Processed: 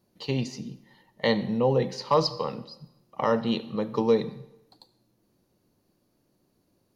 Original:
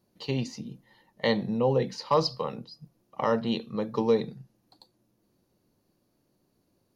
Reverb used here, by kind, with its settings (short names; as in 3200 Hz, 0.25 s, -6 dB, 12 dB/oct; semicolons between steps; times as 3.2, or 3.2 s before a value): digital reverb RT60 0.88 s, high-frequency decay 0.9×, pre-delay 30 ms, DRR 16 dB; gain +1.5 dB